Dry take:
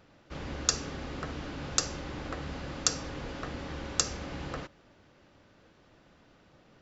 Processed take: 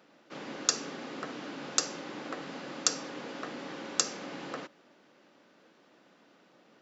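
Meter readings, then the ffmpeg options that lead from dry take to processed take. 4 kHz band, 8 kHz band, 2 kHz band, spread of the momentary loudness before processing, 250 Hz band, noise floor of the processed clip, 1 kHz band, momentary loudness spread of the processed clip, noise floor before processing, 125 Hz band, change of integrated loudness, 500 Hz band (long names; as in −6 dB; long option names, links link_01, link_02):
0.0 dB, can't be measured, 0.0 dB, 11 LU, −1.0 dB, −63 dBFS, 0.0 dB, 12 LU, −62 dBFS, −13.0 dB, −0.5 dB, 0.0 dB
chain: -af "highpass=frequency=200:width=0.5412,highpass=frequency=200:width=1.3066"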